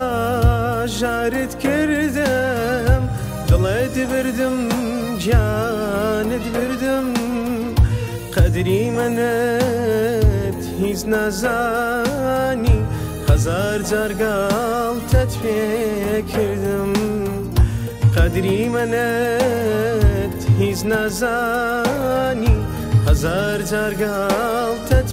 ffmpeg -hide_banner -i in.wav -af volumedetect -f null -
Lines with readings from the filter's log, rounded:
mean_volume: -17.9 dB
max_volume: -3.8 dB